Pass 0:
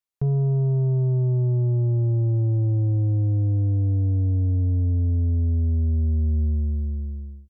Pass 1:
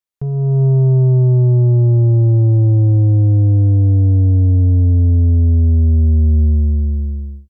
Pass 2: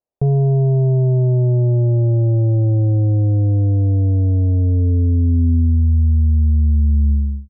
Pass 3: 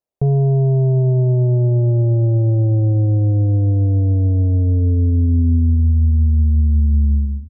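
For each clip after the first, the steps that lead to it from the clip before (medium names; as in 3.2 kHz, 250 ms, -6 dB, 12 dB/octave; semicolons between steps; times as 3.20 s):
level rider gain up to 10 dB
peak limiter -18 dBFS, peak gain reduction 9 dB; low-pass sweep 650 Hz -> 170 Hz, 4.54–5.93 s; trim +5 dB
feedback delay 706 ms, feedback 47%, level -23.5 dB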